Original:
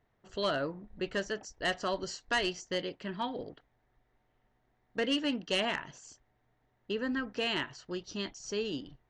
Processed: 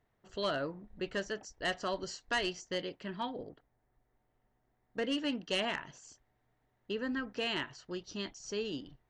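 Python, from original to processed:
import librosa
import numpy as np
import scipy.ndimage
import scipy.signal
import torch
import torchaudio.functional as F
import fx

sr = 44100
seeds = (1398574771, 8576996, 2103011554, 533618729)

y = fx.peak_eq(x, sr, hz=3400.0, db=fx.line((3.3, -9.5), (5.17, -3.0)), octaves=2.3, at=(3.3, 5.17), fade=0.02)
y = F.gain(torch.from_numpy(y), -2.5).numpy()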